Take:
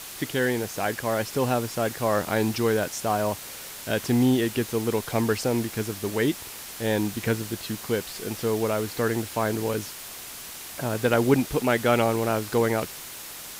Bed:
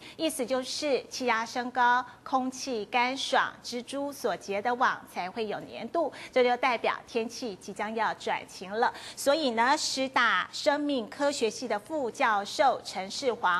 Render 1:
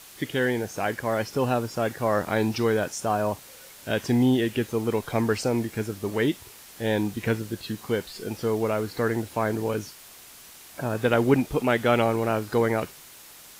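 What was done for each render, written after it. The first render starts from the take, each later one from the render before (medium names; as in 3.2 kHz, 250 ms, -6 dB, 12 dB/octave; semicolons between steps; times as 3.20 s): noise print and reduce 8 dB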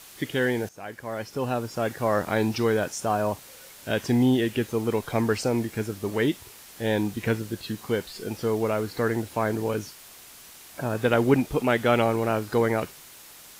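0.69–1.98 s: fade in, from -15 dB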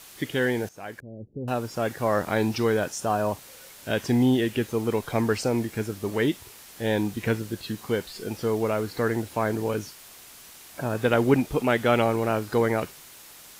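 1.00–1.48 s: Gaussian low-pass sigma 22 samples; 2.89–3.29 s: band-stop 2.2 kHz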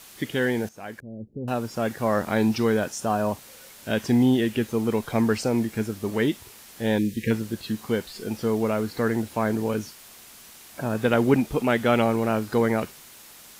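6.98–7.31 s: spectral selection erased 540–1600 Hz; peaking EQ 220 Hz +6 dB 0.24 oct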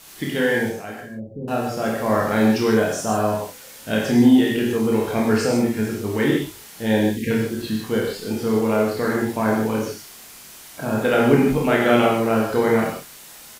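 early reflections 28 ms -4 dB, 50 ms -8 dB; gated-style reverb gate 170 ms flat, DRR 0 dB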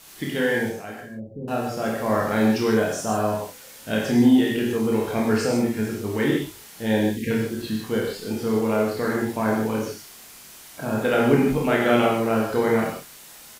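trim -2.5 dB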